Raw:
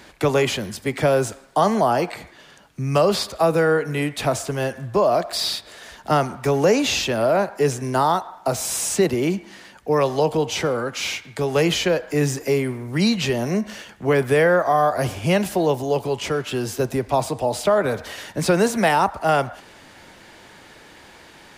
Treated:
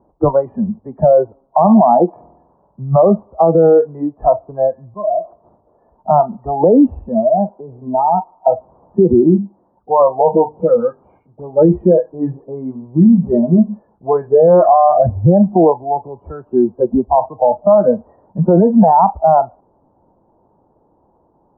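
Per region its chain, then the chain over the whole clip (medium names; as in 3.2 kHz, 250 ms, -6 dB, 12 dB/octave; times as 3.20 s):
2.08–2.83 s: peaking EQ 970 Hz +4 dB 1.4 oct + flutter echo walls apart 8.2 m, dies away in 0.93 s
4.85–5.45 s: slow attack 102 ms + compression 10:1, threshold -25 dBFS
7.00–8.39 s: dynamic bell 1.6 kHz, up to -4 dB, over -32 dBFS, Q 0.78 + compression 12:1, threshold -20 dBFS
9.23–15.06 s: hum notches 50/100/150/200/250/300/350/400/450 Hz + phase dispersion highs, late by 114 ms, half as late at 2 kHz
whole clip: spectral noise reduction 23 dB; steep low-pass 1 kHz 48 dB/octave; loudness maximiser +17.5 dB; trim -1.5 dB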